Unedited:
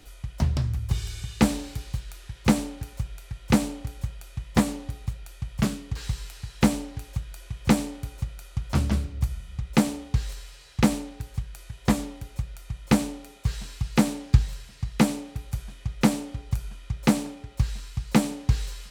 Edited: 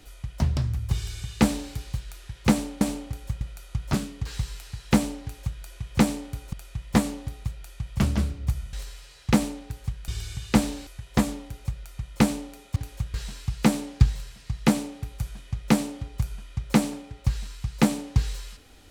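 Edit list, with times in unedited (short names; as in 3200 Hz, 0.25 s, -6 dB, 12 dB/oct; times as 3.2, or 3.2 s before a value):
0.95–1.74 copy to 11.58
2.81–3.55 cut
4.15–5.64 swap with 8.23–8.76
6.92–7.3 copy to 13.47
9.47–10.23 cut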